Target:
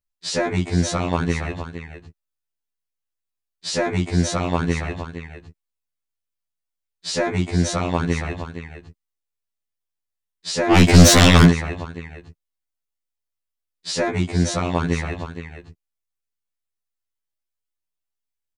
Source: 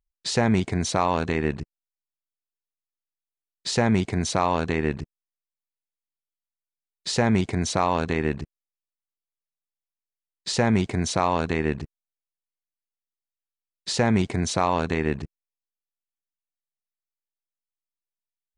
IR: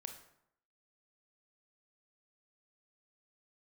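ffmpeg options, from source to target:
-filter_complex "[0:a]aecho=1:1:464:0.282,asplit=3[link_01][link_02][link_03];[link_01]afade=type=out:start_time=10.7:duration=0.02[link_04];[link_02]aeval=exprs='0.447*sin(PI/2*5.01*val(0)/0.447)':channel_layout=same,afade=type=in:start_time=10.7:duration=0.02,afade=type=out:start_time=11.49:duration=0.02[link_05];[link_03]afade=type=in:start_time=11.49:duration=0.02[link_06];[link_04][link_05][link_06]amix=inputs=3:normalize=0,acontrast=43,afftfilt=real='re*2*eq(mod(b,4),0)':imag='im*2*eq(mod(b,4),0)':win_size=2048:overlap=0.75,volume=-1.5dB"

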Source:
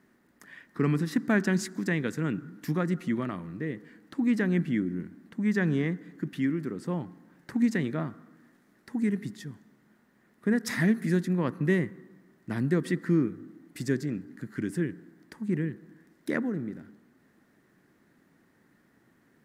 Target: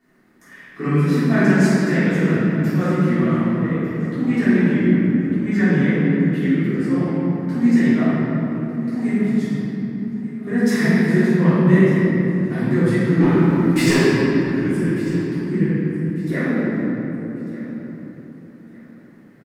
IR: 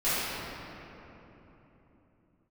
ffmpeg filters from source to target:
-filter_complex "[0:a]asettb=1/sr,asplit=3[link_01][link_02][link_03];[link_01]atrim=end=13.204[link_04];[link_02]atrim=start=13.2:end=13.96,asetpts=PTS-STARTPTS,afade=type=in:duration=0.004:curve=qsin,afade=type=out:start_time=0.756:duration=0.004:curve=qsin,asplit=2[link_05][link_06];[link_06]highpass=frequency=720:poles=1,volume=27dB,asoftclip=type=tanh:threshold=-14.5dB[link_07];[link_05][link_07]amix=inputs=2:normalize=0,lowpass=frequency=6000:poles=1,volume=-6dB[link_08];[link_03]atrim=start=13.956[link_09];[link_04][link_08]acrossfade=duration=0.004:curve1=hsin:curve2=qsin[link_10];[link_10][link_09]acrossfade=duration=0.004:curve1=qsin:curve2=hsin,aecho=1:1:1197|2394|3591:0.126|0.0378|0.0113[link_11];[1:a]atrim=start_sample=2205[link_12];[link_11][link_12]afir=irnorm=-1:irlink=0,volume=-3.5dB"

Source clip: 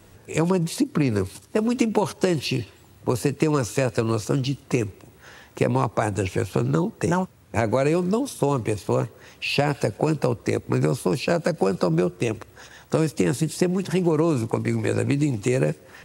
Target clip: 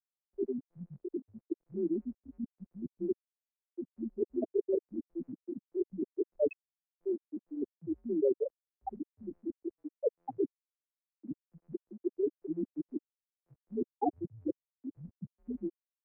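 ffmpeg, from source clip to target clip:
ffmpeg -i in.wav -af "areverse,afftfilt=real='re*gte(hypot(re,im),0.562)':imag='im*gte(hypot(re,im),0.562)':win_size=1024:overlap=0.75,highpass=frequency=550:width_type=q:width=0.5412,highpass=frequency=550:width_type=q:width=1.307,lowpass=frequency=2700:width_type=q:width=0.5176,lowpass=frequency=2700:width_type=q:width=0.7071,lowpass=frequency=2700:width_type=q:width=1.932,afreqshift=-130" out.wav

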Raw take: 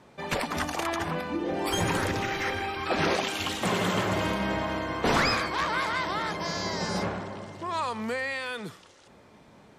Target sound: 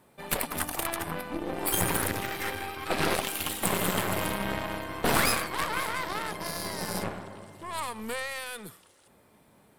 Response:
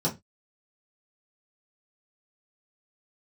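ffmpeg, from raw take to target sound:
-af "aeval=exprs='0.251*(cos(1*acos(clip(val(0)/0.251,-1,1)))-cos(1*PI/2))+0.0501*(cos(4*acos(clip(val(0)/0.251,-1,1)))-cos(4*PI/2))+0.0158*(cos(7*acos(clip(val(0)/0.251,-1,1)))-cos(7*PI/2))':channel_layout=same,aexciter=amount=8.5:drive=3.6:freq=8700,volume=-1.5dB"

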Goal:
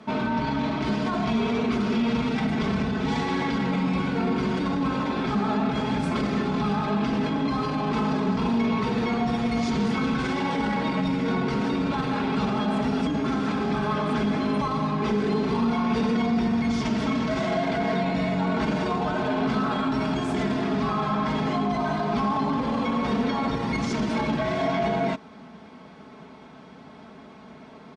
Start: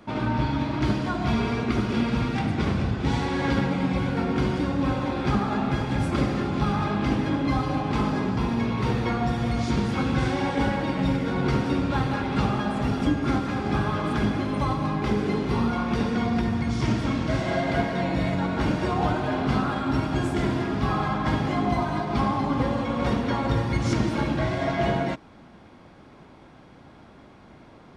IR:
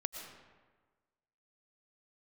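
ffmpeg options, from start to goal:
-af "highpass=100,lowpass=7800,alimiter=limit=-22dB:level=0:latency=1:release=11,aecho=1:1:4.6:0.67,volume=2.5dB"

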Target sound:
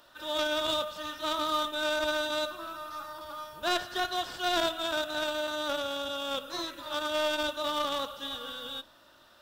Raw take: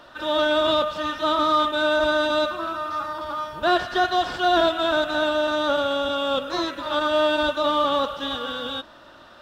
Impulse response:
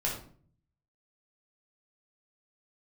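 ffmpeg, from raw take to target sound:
-filter_complex "[0:a]aemphasis=mode=production:type=75fm,aeval=exprs='0.447*(cos(1*acos(clip(val(0)/0.447,-1,1)))-cos(1*PI/2))+0.0794*(cos(3*acos(clip(val(0)/0.447,-1,1)))-cos(3*PI/2))+0.00316*(cos(6*acos(clip(val(0)/0.447,-1,1)))-cos(6*PI/2))':channel_layout=same,asplit=2[link_01][link_02];[1:a]atrim=start_sample=2205[link_03];[link_02][link_03]afir=irnorm=-1:irlink=0,volume=-20.5dB[link_04];[link_01][link_04]amix=inputs=2:normalize=0,volume=-6.5dB"

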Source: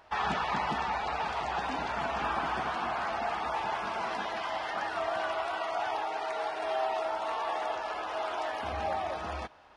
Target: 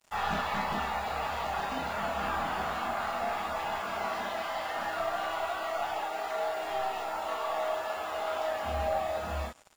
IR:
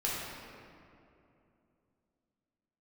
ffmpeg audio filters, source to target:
-filter_complex "[0:a]aeval=exprs='0.112*(cos(1*acos(clip(val(0)/0.112,-1,1)))-cos(1*PI/2))+0.01*(cos(2*acos(clip(val(0)/0.112,-1,1)))-cos(2*PI/2))+0.00891*(cos(3*acos(clip(val(0)/0.112,-1,1)))-cos(3*PI/2))+0.00631*(cos(5*acos(clip(val(0)/0.112,-1,1)))-cos(5*PI/2))+0.000794*(cos(8*acos(clip(val(0)/0.112,-1,1)))-cos(8*PI/2))':channel_layout=same[link_01];[1:a]atrim=start_sample=2205,afade=type=out:start_time=0.15:duration=0.01,atrim=end_sample=7056,asetrate=70560,aresample=44100[link_02];[link_01][link_02]afir=irnorm=-1:irlink=0,aeval=exprs='val(0)+0.000794*sin(2*PI*7100*n/s)':channel_layout=same,acrusher=bits=7:mix=0:aa=0.5"

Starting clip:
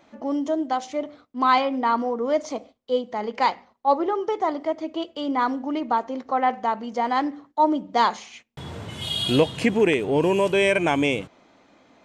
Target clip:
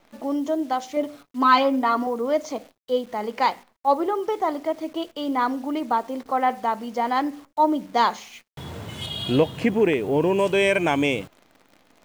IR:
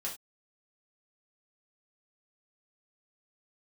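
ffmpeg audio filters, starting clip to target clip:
-filter_complex "[0:a]asettb=1/sr,asplit=3[link_01][link_02][link_03];[link_01]atrim=end=0.964[link_04];[link_02]atrim=start=0.96:end=2.07,asetpts=PTS-STARTPTS,afade=type=in:duration=0.004:curve=qsin,afade=type=out:start_time=1.106:duration=0.004:curve=qsin,aecho=1:1:7.1:0.79,atrim=end_sample=48951[link_05];[link_03]atrim=start=2.066[link_06];[link_04][link_05]acrossfade=duration=0.004:curve1=hsin:curve2=qsin[link_07];[link_07][link_06]acrossfade=duration=0.004:curve1=qsin:curve2=hsin,asettb=1/sr,asplit=3[link_08][link_09][link_10];[link_08]atrim=end=9.064[link_11];[link_09]atrim=start=9.06:end=10.39,asetpts=PTS-STARTPTS,afade=type=in:duration=0.004:curve=qsin,afade=type=out:start_time=1.326:duration=0.004:curve=qsin,highshelf=frequency=3300:gain=-10.5[link_12];[link_10]atrim=start=10.386[link_13];[link_11][link_12]acrossfade=duration=0.004:curve1=hsin:curve2=qsin[link_14];[link_14][link_13]acrossfade=duration=0.004:curve1=qsin:curve2=hsin,acrusher=bits=9:dc=4:mix=0:aa=0.000001"

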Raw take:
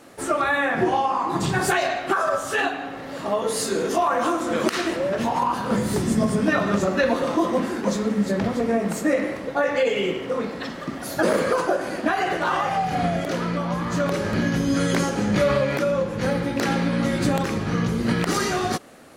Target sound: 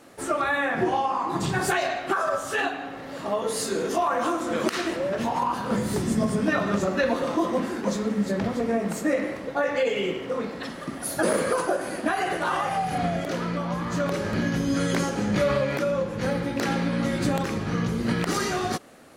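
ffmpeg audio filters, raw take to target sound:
ffmpeg -i in.wav -filter_complex "[0:a]asettb=1/sr,asplit=3[link_01][link_02][link_03];[link_01]atrim=end=10.634[link_04];[link_02]atrim=start=10.63:end=12.98,asetpts=PTS-STARTPTS,afade=type=in:duration=0.004:curve=qsin,afade=type=out:start_time=2.346:duration=0.004:curve=qsin,equalizer=frequency=10000:width_type=o:width=0.4:gain=11.5[link_05];[link_03]atrim=start=12.976[link_06];[link_04][link_05]acrossfade=duration=0.004:curve1=hsin:curve2=qsin[link_07];[link_07][link_06]acrossfade=duration=0.004:curve1=qsin:curve2=hsin,volume=-3dB" out.wav

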